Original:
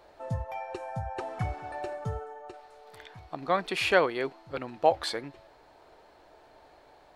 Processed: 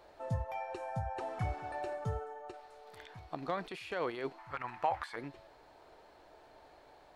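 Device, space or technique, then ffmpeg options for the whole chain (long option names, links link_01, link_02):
de-esser from a sidechain: -filter_complex "[0:a]asettb=1/sr,asplit=3[link_01][link_02][link_03];[link_01]atrim=end=4.384[link_04];[link_02]atrim=start=4.38:end=5.16,asetpts=PTS-STARTPTS,afade=type=in:duration=0.004:curve=qsin,afade=type=out:start_time=0.776:duration=0.004:curve=qsin,equalizer=frequency=250:width_type=o:width=1:gain=-9,equalizer=frequency=500:width_type=o:width=1:gain=-9,equalizer=frequency=1000:width_type=o:width=1:gain=11,equalizer=frequency=2000:width_type=o:width=1:gain=9,equalizer=frequency=4000:width_type=o:width=1:gain=-5[link_05];[link_03]atrim=start=5.156[link_06];[link_04][link_05]acrossfade=duration=0.004:curve1=hsin:curve2=qsin[link_07];[link_07][link_06]acrossfade=duration=0.004:curve1=qsin:curve2=hsin,asplit=2[link_08][link_09];[link_09]highpass=5000,apad=whole_len=315388[link_10];[link_08][link_10]sidechaincompress=threshold=-55dB:ratio=5:attack=4:release=38,volume=-2.5dB"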